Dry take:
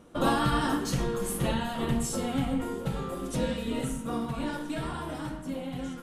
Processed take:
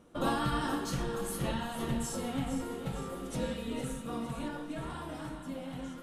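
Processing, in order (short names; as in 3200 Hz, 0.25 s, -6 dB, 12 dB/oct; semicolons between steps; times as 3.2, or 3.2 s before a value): 4.48–4.9 high shelf 3800 Hz -10.5 dB; thinning echo 0.459 s, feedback 59%, level -10 dB; gain -5.5 dB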